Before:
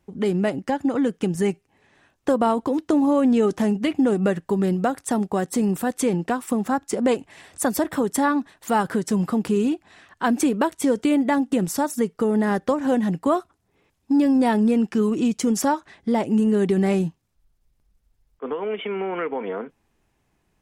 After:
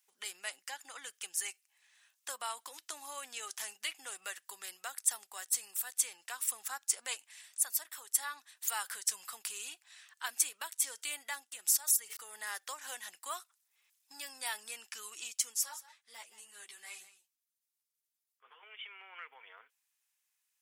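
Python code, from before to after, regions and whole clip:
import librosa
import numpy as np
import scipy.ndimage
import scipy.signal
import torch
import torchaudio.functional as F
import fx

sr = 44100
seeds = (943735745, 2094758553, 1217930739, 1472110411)

y = fx.chain(x, sr, fx.comb(ms=4.8, depth=0.33),
    fx.sustainer(db_per_s=27.0), at=(11.55, 12.17))
y = fx.chain(y, sr, fx.echo_single(ms=173, db=-15.0),
    fx.ensemble(), at=(15.54, 18.63))
y = scipy.signal.sosfilt(scipy.signal.butter(2, 1100.0, 'highpass', fs=sr, output='sos'), y)
y = np.diff(y, prepend=0.0)
y = fx.rider(y, sr, range_db=5, speed_s=0.5)
y = y * 10.0 ** (-1.5 / 20.0)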